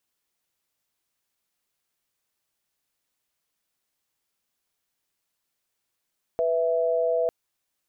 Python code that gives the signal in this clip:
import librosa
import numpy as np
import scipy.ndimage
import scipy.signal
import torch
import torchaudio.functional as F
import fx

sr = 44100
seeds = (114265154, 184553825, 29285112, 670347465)

y = fx.chord(sr, length_s=0.9, notes=(71, 76), wave='sine', level_db=-23.5)